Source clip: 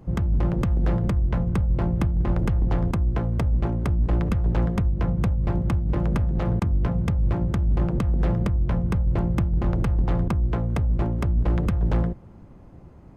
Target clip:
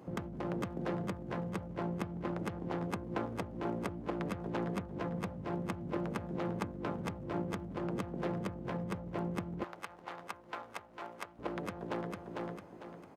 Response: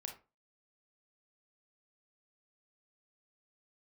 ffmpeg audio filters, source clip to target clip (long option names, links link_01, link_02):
-af "aecho=1:1:450|900|1350|1800:0.376|0.135|0.0487|0.0175,alimiter=limit=-21.5dB:level=0:latency=1:release=104,asetnsamples=nb_out_samples=441:pad=0,asendcmd='9.64 highpass f 900;11.39 highpass f 370',highpass=270"